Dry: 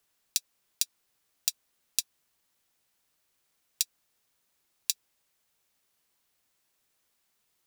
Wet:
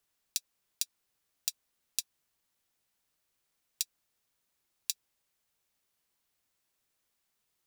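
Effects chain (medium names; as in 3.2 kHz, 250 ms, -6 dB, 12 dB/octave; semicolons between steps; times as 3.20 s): bass shelf 130 Hz +3.5 dB; trim -5 dB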